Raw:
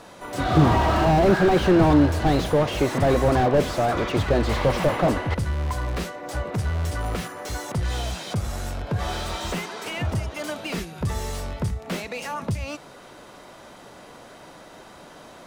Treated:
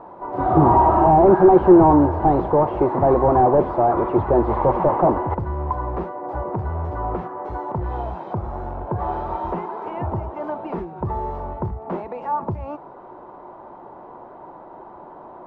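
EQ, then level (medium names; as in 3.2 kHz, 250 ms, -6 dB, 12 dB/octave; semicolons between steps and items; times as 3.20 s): resonant low-pass 920 Hz, resonance Q 4.1; peaking EQ 360 Hz +10 dB 0.29 oct; -1.5 dB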